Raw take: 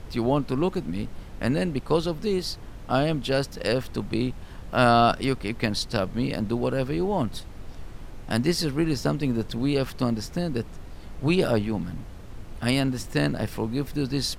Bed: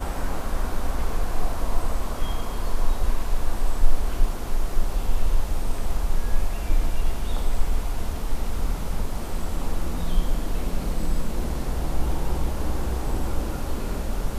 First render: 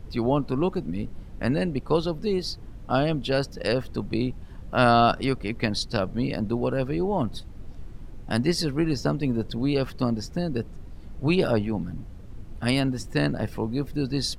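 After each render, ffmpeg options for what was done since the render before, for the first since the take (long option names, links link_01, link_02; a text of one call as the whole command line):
ffmpeg -i in.wav -af "afftdn=noise_reduction=9:noise_floor=-41" out.wav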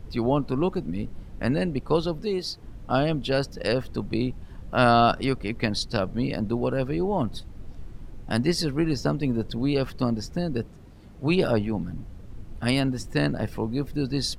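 ffmpeg -i in.wav -filter_complex "[0:a]asettb=1/sr,asplit=3[link_01][link_02][link_03];[link_01]atrim=end=2.224[link_04];[link_02]atrim=start=2.22:end=2.64,asetpts=PTS-STARTPTS,afade=type=in:duration=0.004:curve=qsin,afade=type=out:start_time=0.416:duration=0.004:curve=qsin,lowshelf=frequency=140:gain=-11[link_05];[link_03]atrim=start=2.636[link_06];[link_04][link_05]acrossfade=duration=0.004:curve1=hsin:curve2=qsin[link_07];[link_07][link_06]acrossfade=duration=0.004:curve1=qsin:curve2=hsin,asettb=1/sr,asplit=3[link_08][link_09][link_10];[link_08]atrim=end=10.664[link_11];[link_09]atrim=start=10.66:end=11.31,asetpts=PTS-STARTPTS,afade=type=in:duration=0.004:curve=qsin,afade=type=out:start_time=0.646:duration=0.004:curve=qsin,highpass=frequency=110:poles=1[link_12];[link_10]atrim=start=11.306[link_13];[link_11][link_12]acrossfade=duration=0.004:curve1=hsin:curve2=qsin[link_14];[link_14][link_13]acrossfade=duration=0.004:curve1=qsin:curve2=hsin" out.wav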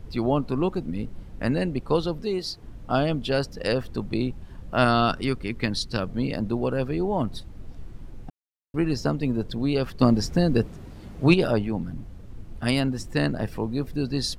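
ffmpeg -i in.wav -filter_complex "[0:a]asettb=1/sr,asplit=3[link_01][link_02][link_03];[link_01]atrim=end=4.844[link_04];[link_02]atrim=start=4.84:end=6.1,asetpts=PTS-STARTPTS,afade=type=in:duration=0.004:curve=qsin,afade=type=out:start_time=1.256:duration=0.004:curve=qsin,equalizer=frequency=670:width_type=o:width=0.77:gain=-6[link_05];[link_03]atrim=start=6.096[link_06];[link_04][link_05]acrossfade=duration=0.004:curve1=hsin:curve2=qsin[link_07];[link_07][link_06]acrossfade=duration=0.004:curve1=qsin:curve2=hsin,asettb=1/sr,asplit=3[link_08][link_09][link_10];[link_08]atrim=end=10.014[link_11];[link_09]atrim=start=10.01:end=11.34,asetpts=PTS-STARTPTS,afade=type=in:duration=0.004:curve=qsin,afade=type=out:start_time=1.326:duration=0.004:curve=qsin,acontrast=72[link_12];[link_10]atrim=start=11.336[link_13];[link_11][link_12]acrossfade=duration=0.004:curve1=hsin:curve2=qsin[link_14];[link_14][link_13]acrossfade=duration=0.004:curve1=qsin:curve2=hsin,asplit=3[link_15][link_16][link_17];[link_15]atrim=end=8.3,asetpts=PTS-STARTPTS,afade=type=out:start_time=8.296:duration=0.004:curve=hsin[link_18];[link_16]atrim=start=8.3:end=8.74,asetpts=PTS-STARTPTS,volume=0[link_19];[link_17]atrim=start=8.74,asetpts=PTS-STARTPTS,afade=type=in:duration=0.004:curve=hsin[link_20];[link_18][link_19][link_20]concat=n=3:v=0:a=1" out.wav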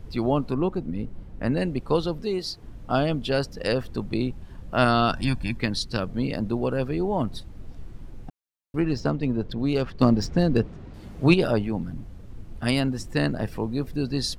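ffmpeg -i in.wav -filter_complex "[0:a]asettb=1/sr,asplit=3[link_01][link_02][link_03];[link_01]atrim=end=0.544[link_04];[link_02]atrim=start=0.54:end=1.57,asetpts=PTS-STARTPTS,afade=type=in:duration=0.004:curve=qsin,afade=type=out:start_time=1.026:duration=0.004:curve=qsin,highshelf=frequency=2300:gain=-8[link_05];[link_03]atrim=start=1.566[link_06];[link_04][link_05]acrossfade=duration=0.004:curve1=hsin:curve2=qsin[link_07];[link_07][link_06]acrossfade=duration=0.004:curve1=qsin:curve2=hsin,asettb=1/sr,asplit=3[link_08][link_09][link_10];[link_08]atrim=end=5.144[link_11];[link_09]atrim=start=5.14:end=5.57,asetpts=PTS-STARTPTS,afade=type=in:duration=0.004:curve=qsin,afade=type=out:start_time=0.426:duration=0.004:curve=qsin,aecho=1:1:1.2:0.96,atrim=end_sample=18963[link_12];[link_10]atrim=start=5.566[link_13];[link_11][link_12]acrossfade=duration=0.004:curve1=hsin:curve2=qsin[link_14];[link_14][link_13]acrossfade=duration=0.004:curve1=qsin:curve2=hsin,asettb=1/sr,asplit=3[link_15][link_16][link_17];[link_15]atrim=end=8.804[link_18];[link_16]atrim=start=8.8:end=10.94,asetpts=PTS-STARTPTS,afade=type=in:duration=0.004:curve=qsin,afade=type=out:start_time=2.136:duration=0.004:curve=qsin,adynamicsmooth=sensitivity=3.5:basefreq=4700[link_19];[link_17]atrim=start=10.936[link_20];[link_18][link_19]acrossfade=duration=0.004:curve1=hsin:curve2=qsin[link_21];[link_21][link_20]acrossfade=duration=0.004:curve1=qsin:curve2=hsin" out.wav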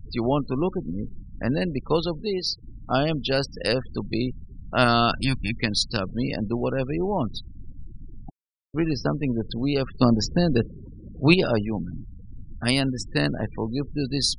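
ffmpeg -i in.wav -af "afftfilt=real='re*gte(hypot(re,im),0.0158)':imag='im*gte(hypot(re,im),0.0158)':win_size=1024:overlap=0.75,highshelf=frequency=3100:gain=8.5" out.wav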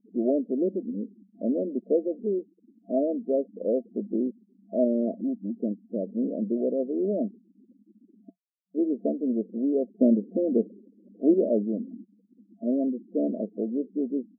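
ffmpeg -i in.wav -af "agate=range=-33dB:threshold=-34dB:ratio=3:detection=peak,afftfilt=real='re*between(b*sr/4096,190,680)':imag='im*between(b*sr/4096,190,680)':win_size=4096:overlap=0.75" out.wav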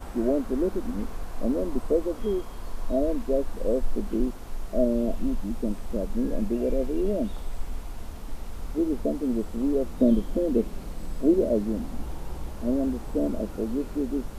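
ffmpeg -i in.wav -i bed.wav -filter_complex "[1:a]volume=-10dB[link_01];[0:a][link_01]amix=inputs=2:normalize=0" out.wav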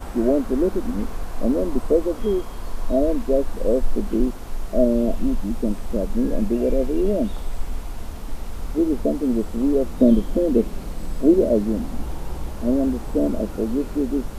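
ffmpeg -i in.wav -af "volume=5.5dB" out.wav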